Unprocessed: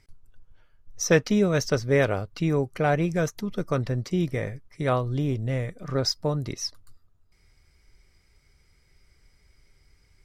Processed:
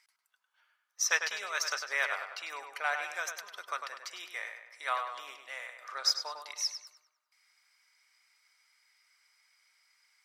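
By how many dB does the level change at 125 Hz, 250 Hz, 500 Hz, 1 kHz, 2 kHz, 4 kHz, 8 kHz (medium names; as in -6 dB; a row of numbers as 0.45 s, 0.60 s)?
under -40 dB, under -40 dB, -20.5 dB, -4.0 dB, 0.0 dB, -0.5 dB, -0.5 dB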